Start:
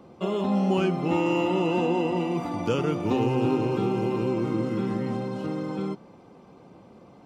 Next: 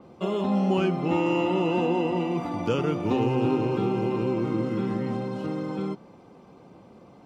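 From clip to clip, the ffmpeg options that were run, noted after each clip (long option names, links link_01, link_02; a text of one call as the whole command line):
ffmpeg -i in.wav -af "adynamicequalizer=threshold=0.00355:dfrequency=5300:dqfactor=0.7:tfrequency=5300:tqfactor=0.7:attack=5:release=100:ratio=0.375:range=3:mode=cutabove:tftype=highshelf" out.wav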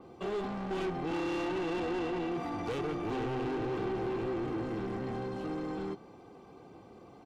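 ffmpeg -i in.wav -af "asoftclip=type=tanh:threshold=-30dB,aecho=1:1:2.6:0.4,volume=-2.5dB" out.wav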